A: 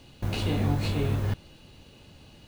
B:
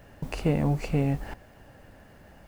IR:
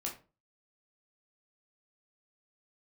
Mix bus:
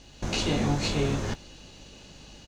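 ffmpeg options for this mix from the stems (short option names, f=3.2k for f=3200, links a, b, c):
-filter_complex "[0:a]dynaudnorm=f=110:g=3:m=4dB,lowpass=f=6.5k:t=q:w=3.4,volume=-1dB[a];[1:a]adelay=16,volume=-9.5dB[b];[a][b]amix=inputs=2:normalize=0,equalizer=f=96:w=1.5:g=-11,aeval=exprs='val(0)+0.00224*(sin(2*PI*50*n/s)+sin(2*PI*2*50*n/s)/2+sin(2*PI*3*50*n/s)/3+sin(2*PI*4*50*n/s)/4+sin(2*PI*5*50*n/s)/5)':c=same"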